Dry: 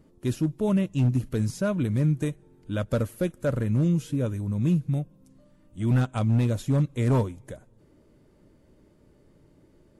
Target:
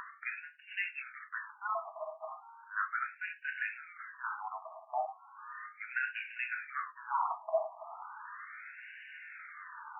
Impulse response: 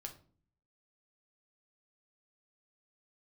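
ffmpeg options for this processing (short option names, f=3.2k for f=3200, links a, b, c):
-filter_complex "[0:a]asplit=2[a][b];[b]acompressor=mode=upward:threshold=-29dB:ratio=2.5,volume=0.5dB[c];[a][c]amix=inputs=2:normalize=0,highpass=400,lowpass=6.6k[d];[1:a]atrim=start_sample=2205,afade=t=out:st=0.18:d=0.01,atrim=end_sample=8379[e];[d][e]afir=irnorm=-1:irlink=0,afreqshift=36,areverse,acompressor=threshold=-39dB:ratio=12,areverse,afftfilt=real='re*between(b*sr/1024,870*pow(2100/870,0.5+0.5*sin(2*PI*0.36*pts/sr))/1.41,870*pow(2100/870,0.5+0.5*sin(2*PI*0.36*pts/sr))*1.41)':imag='im*between(b*sr/1024,870*pow(2100/870,0.5+0.5*sin(2*PI*0.36*pts/sr))/1.41,870*pow(2100/870,0.5+0.5*sin(2*PI*0.36*pts/sr))*1.41)':win_size=1024:overlap=0.75,volume=18dB"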